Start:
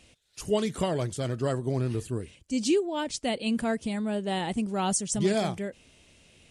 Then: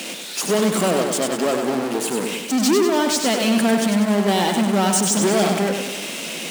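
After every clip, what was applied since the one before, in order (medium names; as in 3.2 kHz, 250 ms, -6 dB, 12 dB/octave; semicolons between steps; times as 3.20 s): power-law waveshaper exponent 0.35; steep high-pass 180 Hz 48 dB/octave; bit-crushed delay 97 ms, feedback 55%, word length 8-bit, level -5 dB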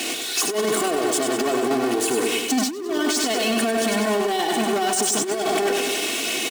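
comb 2.7 ms, depth 91%; compressor with a negative ratio -18 dBFS, ratio -0.5; peak limiter -12.5 dBFS, peak gain reduction 7 dB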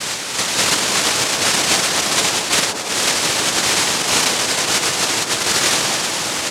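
comb filter that takes the minimum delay 7.1 ms; noise-vocoded speech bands 1; feedback echo behind a band-pass 163 ms, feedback 79%, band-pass 460 Hz, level -7 dB; trim +6 dB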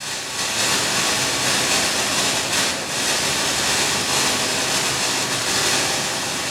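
reverberation RT60 0.90 s, pre-delay 15 ms, DRR -2.5 dB; trim -9 dB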